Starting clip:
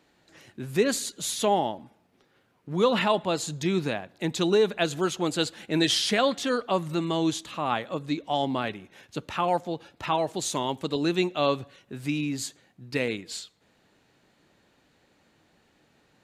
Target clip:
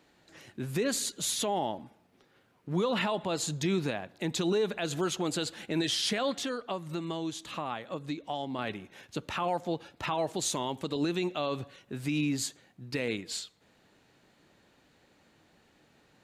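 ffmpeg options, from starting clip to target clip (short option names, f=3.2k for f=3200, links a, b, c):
-filter_complex "[0:a]asettb=1/sr,asplit=3[a][b][c];[a]atrim=end=6.314[d];[b]atrim=start=6.31:end=8.59,asetpts=PTS-STARTPTS,afade=t=in:d=0.004:c=qsin,afade=t=out:st=2.276:d=0.004:c=qsin,acompressor=threshold=-33dB:ratio=4[e];[c]atrim=start=8.586[f];[d][e]acrossfade=d=0.004:c1=hsin:c2=qsin[g];[g][f]acrossfade=d=0.004:c1=qsin:c2=hsin,alimiter=limit=-20.5dB:level=0:latency=1:release=80"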